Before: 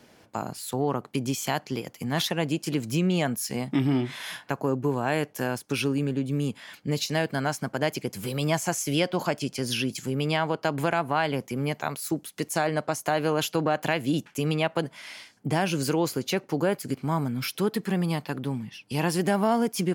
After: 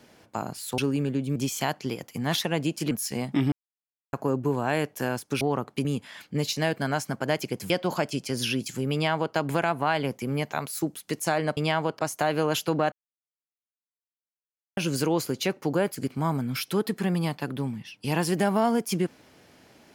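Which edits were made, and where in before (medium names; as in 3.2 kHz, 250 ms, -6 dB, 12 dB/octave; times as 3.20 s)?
0.78–1.22 s: swap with 5.80–6.38 s
2.77–3.30 s: delete
3.91–4.52 s: mute
8.23–8.99 s: delete
10.22–10.64 s: copy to 12.86 s
13.79–15.64 s: mute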